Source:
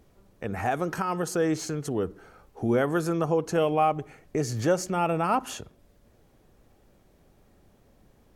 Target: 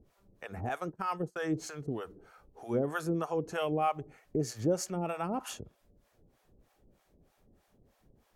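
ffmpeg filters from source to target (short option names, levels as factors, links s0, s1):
-filter_complex "[0:a]asettb=1/sr,asplit=3[s0][s1][s2];[s0]atrim=end=0.694[s3];[s1]atrim=start=0.69:end=1.55,asetpts=PTS-STARTPTS,afade=t=in:d=0.004:c=qsin,afade=t=out:st=0.856:d=0.004:c=qsin,agate=range=0.0316:threshold=0.0355:ratio=16:detection=peak[s4];[s2]atrim=start=1.546[s5];[s3][s4]acrossfade=d=0.004:c1=hsin:c2=qsin[s6];[s6][s5]acrossfade=d=0.004:c1=qsin:c2=hsin,acrossover=split=600[s7][s8];[s7]aeval=exprs='val(0)*(1-1/2+1/2*cos(2*PI*3.2*n/s))':c=same[s9];[s8]aeval=exprs='val(0)*(1-1/2-1/2*cos(2*PI*3.2*n/s))':c=same[s10];[s9][s10]amix=inputs=2:normalize=0,volume=0.794"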